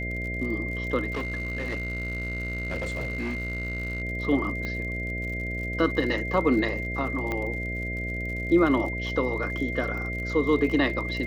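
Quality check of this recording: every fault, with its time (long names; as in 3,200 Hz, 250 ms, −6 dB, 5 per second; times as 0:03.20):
mains buzz 60 Hz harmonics 11 −33 dBFS
surface crackle 54 per second −35 dBFS
whistle 2,100 Hz −32 dBFS
0:01.11–0:04.02: clipping −26 dBFS
0:04.65: click −20 dBFS
0:07.32: click −16 dBFS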